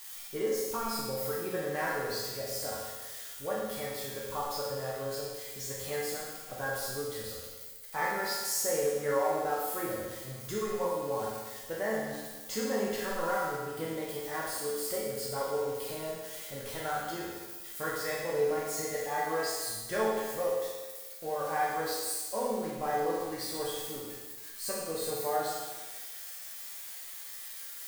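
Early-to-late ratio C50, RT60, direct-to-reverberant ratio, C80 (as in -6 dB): -0.5 dB, 1.3 s, -6.0 dB, 2.0 dB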